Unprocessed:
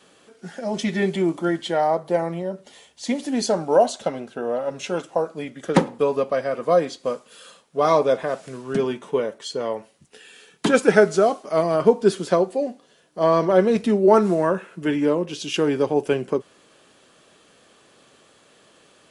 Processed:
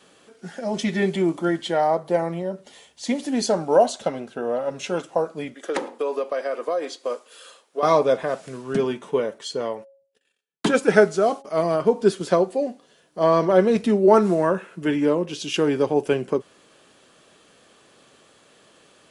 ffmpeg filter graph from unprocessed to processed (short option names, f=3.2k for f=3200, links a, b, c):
-filter_complex "[0:a]asettb=1/sr,asplit=3[a][b][c];[a]atrim=end=5.544[d];[b]atrim=start=5.54:end=7.83,asetpts=PTS-STARTPTS,afade=t=in:d=0.004:c=qsin,afade=t=out:st=2.286:d=0.004:c=qsin,highpass=f=310:w=0.5412,highpass=f=310:w=1.3066,acompressor=threshold=-20dB:ratio=6:attack=3.2:release=140:knee=1:detection=peak[e];[c]atrim=start=7.826[f];[d][e]acrossfade=d=0.004:c1=hsin:c2=qsin[g];[g][f]acrossfade=d=0.004:c1=qsin:c2=hsin,asettb=1/sr,asplit=3[h][i][j];[h]atrim=end=9.614[k];[i]atrim=start=9.61:end=12.21,asetpts=PTS-STARTPTS,afade=t=in:d=0.004:c=qsin,afade=t=out:st=2.596:d=0.004:c=qsin,agate=range=-38dB:threshold=-44dB:ratio=16:release=100:detection=peak,bandreject=f=274.5:t=h:w=4,bandreject=f=549:t=h:w=4,bandreject=f=823.5:t=h:w=4,tremolo=f=2.9:d=0.36[l];[j]atrim=start=12.206[m];[k][l]acrossfade=d=0.004:c1=hsin:c2=qsin[n];[n][m]acrossfade=d=0.004:c1=qsin:c2=hsin"